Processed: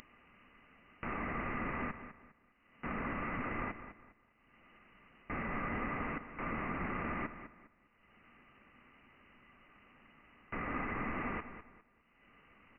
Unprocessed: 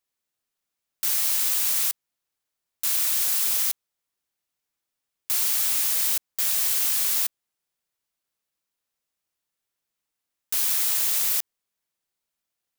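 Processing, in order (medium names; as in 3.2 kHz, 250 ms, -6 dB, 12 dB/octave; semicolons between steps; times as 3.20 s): upward compressor, threshold -33 dBFS; feedback delay 203 ms, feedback 30%, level -11.5 dB; frequency inversion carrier 2.9 kHz; bass shelf 60 Hz +9.5 dB; small resonant body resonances 230/1200/2000 Hz, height 11 dB, ringing for 30 ms; trim -2.5 dB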